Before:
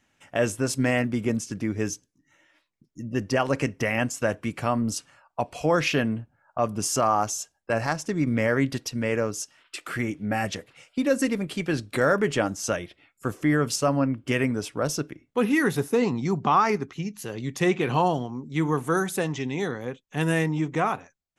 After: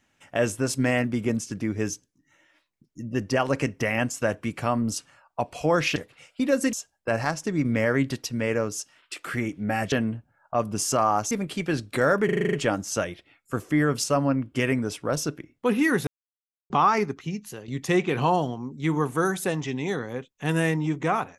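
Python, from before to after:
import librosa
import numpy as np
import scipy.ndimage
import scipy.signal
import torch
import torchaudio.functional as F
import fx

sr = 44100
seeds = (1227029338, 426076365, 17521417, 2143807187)

y = fx.edit(x, sr, fx.swap(start_s=5.96, length_s=1.39, other_s=10.54, other_length_s=0.77),
    fx.stutter(start_s=12.25, slice_s=0.04, count=8),
    fx.silence(start_s=15.79, length_s=0.63),
    fx.fade_out_to(start_s=17.13, length_s=0.27, floor_db=-11.5), tone=tone)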